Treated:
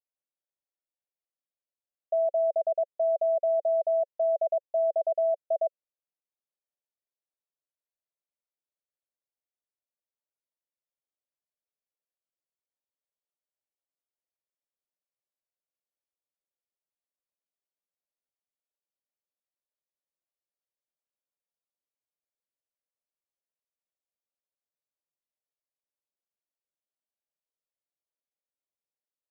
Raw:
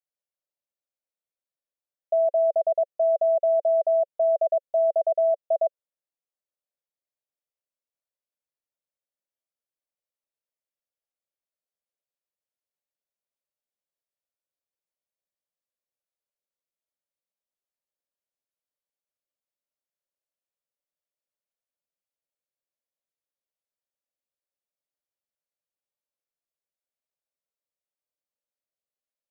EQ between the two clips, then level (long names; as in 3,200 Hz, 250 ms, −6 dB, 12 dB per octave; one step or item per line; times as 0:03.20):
flat-topped band-pass 510 Hz, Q 0.7
−4.0 dB